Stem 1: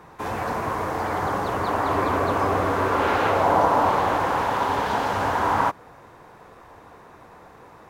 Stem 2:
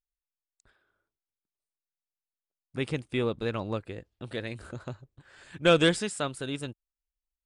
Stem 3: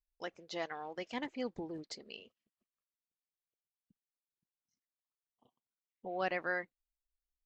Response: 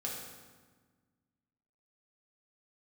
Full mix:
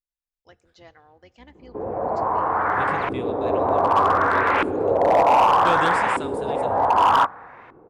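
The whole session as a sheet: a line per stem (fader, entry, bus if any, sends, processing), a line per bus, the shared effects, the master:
+1.5 dB, 1.55 s, send -22.5 dB, bass shelf 380 Hz -7.5 dB; LFO low-pass saw up 0.65 Hz 320–2500 Hz
-7.0 dB, 0.00 s, send -11 dB, none
-10.0 dB, 0.25 s, send -19 dB, octave divider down 2 oct, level 0 dB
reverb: on, RT60 1.4 s, pre-delay 3 ms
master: hard clipper -11 dBFS, distortion -16 dB

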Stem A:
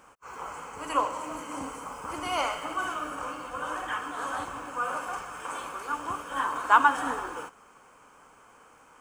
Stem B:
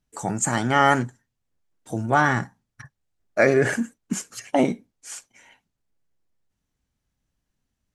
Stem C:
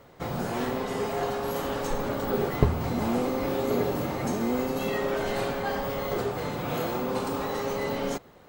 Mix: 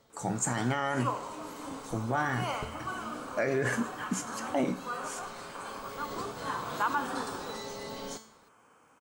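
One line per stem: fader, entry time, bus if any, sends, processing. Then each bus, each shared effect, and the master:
-7.0 dB, 0.10 s, no send, high-pass 140 Hz 12 dB/octave; bass shelf 190 Hz +12 dB
-1.5 dB, 0.00 s, no send, feedback comb 62 Hz, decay 0.29 s, harmonics all, mix 60%
+0.5 dB, 0.00 s, no send, high-order bell 5.9 kHz +9.5 dB; feedback comb 220 Hz, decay 0.51 s, harmonics all, mix 80%; auto duck -8 dB, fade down 0.25 s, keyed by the second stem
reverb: none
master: peak limiter -19 dBFS, peak gain reduction 9 dB

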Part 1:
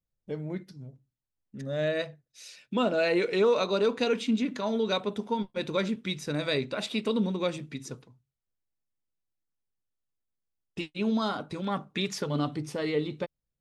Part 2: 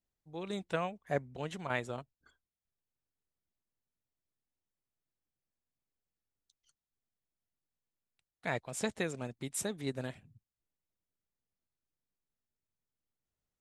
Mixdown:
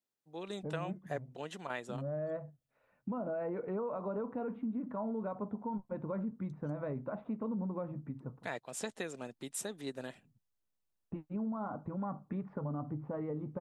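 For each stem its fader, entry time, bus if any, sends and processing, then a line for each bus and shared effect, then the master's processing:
0.0 dB, 0.35 s, no send, low-pass 1.1 kHz 24 dB/octave; peaking EQ 400 Hz -9.5 dB 0.72 oct; peak limiter -26 dBFS, peak gain reduction 6.5 dB
-1.0 dB, 0.00 s, no send, high-pass 210 Hz 12 dB/octave; band-stop 2.2 kHz, Q 12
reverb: none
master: compression 2:1, threshold -37 dBFS, peak gain reduction 6 dB

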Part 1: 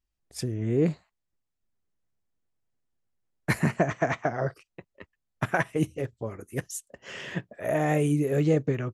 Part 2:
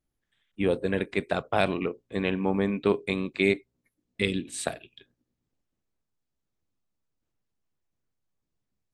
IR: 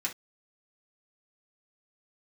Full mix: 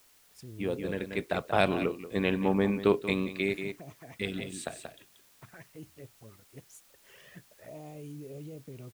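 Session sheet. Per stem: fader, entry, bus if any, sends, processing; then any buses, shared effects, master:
-14.0 dB, 0.00 s, no send, no echo send, peak limiter -22 dBFS, peak gain reduction 10.5 dB; touch-sensitive flanger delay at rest 5.1 ms, full sweep at -27.5 dBFS; word length cut 8-bit, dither triangular
-0.5 dB, 0.00 s, no send, echo send -13.5 dB, auto duck -7 dB, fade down 0.25 s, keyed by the first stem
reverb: none
echo: delay 183 ms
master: none

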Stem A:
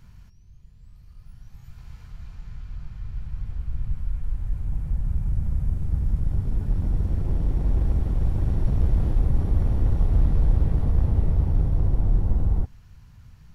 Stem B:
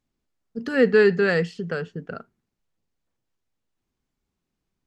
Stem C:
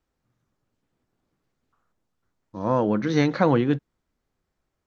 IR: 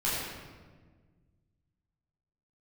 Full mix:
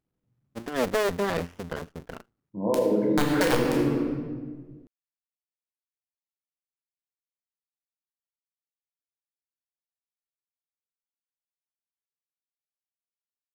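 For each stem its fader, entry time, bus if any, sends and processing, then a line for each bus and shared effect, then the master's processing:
mute
-4.0 dB, 0.00 s, no send, cycle switcher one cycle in 2, muted; sliding maximum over 9 samples
-5.5 dB, 0.00 s, send -3 dB, resonances exaggerated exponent 3; high-pass 120 Hz 24 dB/octave; integer overflow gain 12 dB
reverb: on, RT60 1.5 s, pre-delay 10 ms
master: compression 6:1, threshold -19 dBFS, peak gain reduction 8 dB

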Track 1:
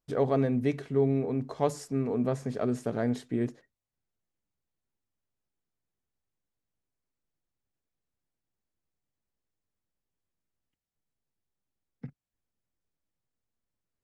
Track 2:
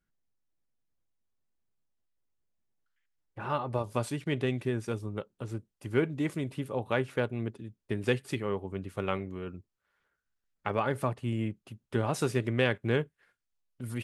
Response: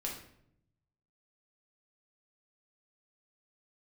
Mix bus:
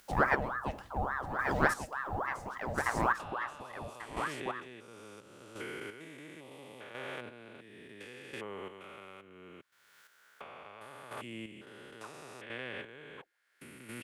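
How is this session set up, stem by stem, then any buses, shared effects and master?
0.0 dB, 0.00 s, send -12.5 dB, echo send -4.5 dB, treble shelf 5.1 kHz +6 dB; ring modulator with a swept carrier 910 Hz, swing 65%, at 3.5 Hz
+2.5 dB, 0.00 s, no send, no echo send, spectrogram pixelated in time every 400 ms; high-pass 1.2 kHz 6 dB/octave; three bands compressed up and down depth 100%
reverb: on, RT60 0.70 s, pre-delay 5 ms
echo: delay 1141 ms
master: square tremolo 0.72 Hz, depth 60%, duty 25%

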